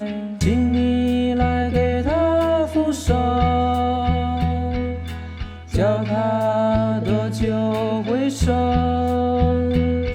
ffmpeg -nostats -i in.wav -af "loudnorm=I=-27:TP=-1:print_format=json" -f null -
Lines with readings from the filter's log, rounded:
"input_i" : "-20.1",
"input_tp" : "-6.4",
"input_lra" : "2.0",
"input_thresh" : "-30.2",